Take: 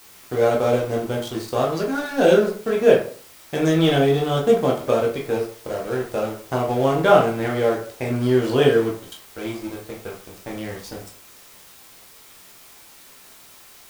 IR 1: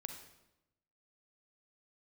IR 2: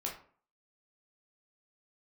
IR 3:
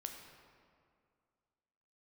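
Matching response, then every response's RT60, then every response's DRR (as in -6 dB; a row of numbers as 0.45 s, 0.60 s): 2; 0.90 s, 0.45 s, 2.2 s; 5.0 dB, -2.5 dB, 3.0 dB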